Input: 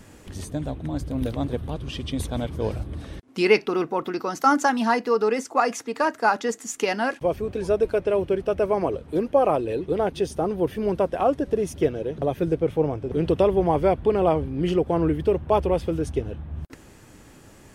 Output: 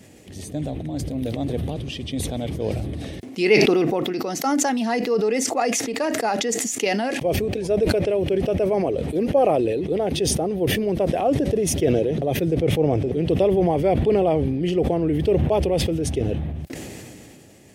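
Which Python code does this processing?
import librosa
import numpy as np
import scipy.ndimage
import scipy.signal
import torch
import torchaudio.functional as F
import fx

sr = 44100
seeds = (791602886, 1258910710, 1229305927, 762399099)

y = scipy.signal.sosfilt(scipy.signal.butter(2, 94.0, 'highpass', fs=sr, output='sos'), x)
y = fx.band_shelf(y, sr, hz=1200.0, db=-10.0, octaves=1.0)
y = fx.sustainer(y, sr, db_per_s=22.0)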